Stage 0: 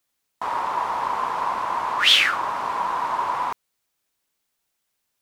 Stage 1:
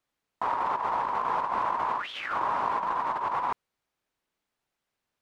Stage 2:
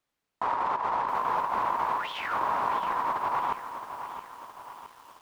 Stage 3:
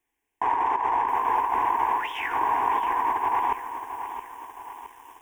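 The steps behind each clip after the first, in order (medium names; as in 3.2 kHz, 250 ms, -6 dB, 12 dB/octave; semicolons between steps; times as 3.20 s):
low-pass 1.8 kHz 6 dB/octave; compressor with a negative ratio -27 dBFS, ratio -0.5; trim -1.5 dB
bit-crushed delay 668 ms, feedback 55%, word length 8-bit, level -10 dB
Butterworth band-stop 4.3 kHz, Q 3.6; static phaser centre 870 Hz, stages 8; trim +6 dB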